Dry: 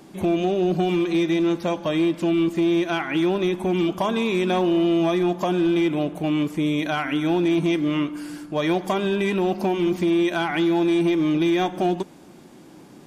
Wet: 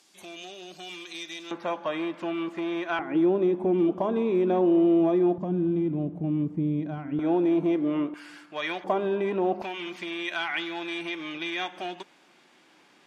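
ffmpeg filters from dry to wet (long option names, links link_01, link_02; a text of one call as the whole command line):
ffmpeg -i in.wav -af "asetnsamples=nb_out_samples=441:pad=0,asendcmd='1.51 bandpass f 1200;2.99 bandpass f 400;5.38 bandpass f 150;7.19 bandpass f 520;8.14 bandpass f 2100;8.84 bandpass f 610;9.62 bandpass f 2400',bandpass=frequency=5800:width_type=q:width=0.97:csg=0" out.wav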